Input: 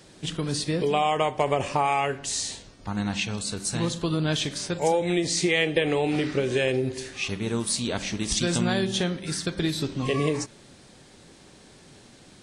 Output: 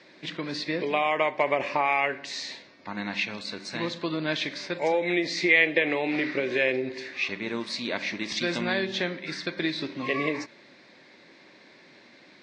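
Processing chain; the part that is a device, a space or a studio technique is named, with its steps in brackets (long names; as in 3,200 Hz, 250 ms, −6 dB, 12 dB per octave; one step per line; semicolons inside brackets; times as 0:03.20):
phone earpiece (loudspeaker in its box 370–4,100 Hz, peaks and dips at 440 Hz −8 dB, 780 Hz −8 dB, 1,300 Hz −7 dB, 2,100 Hz +6 dB, 3,100 Hz −10 dB)
level +4 dB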